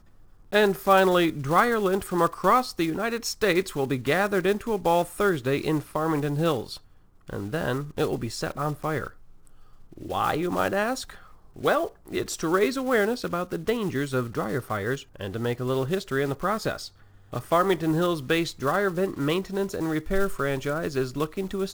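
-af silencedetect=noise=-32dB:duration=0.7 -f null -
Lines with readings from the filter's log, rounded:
silence_start: 9.07
silence_end: 9.98 | silence_duration: 0.90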